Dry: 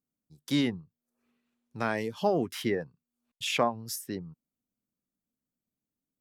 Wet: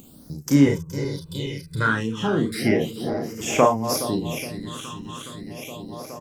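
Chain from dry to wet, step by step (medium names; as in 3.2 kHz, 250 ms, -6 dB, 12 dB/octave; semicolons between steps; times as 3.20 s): backward echo that repeats 209 ms, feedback 77%, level -10.5 dB; 0.66–1.87 s: comb 2 ms, depth 90%; upward compressor, threshold -32 dBFS; early reflections 36 ms -4.5 dB, 49 ms -9 dB; phase shifter stages 8, 0.35 Hz, lowest notch 620–3900 Hz; trim +8.5 dB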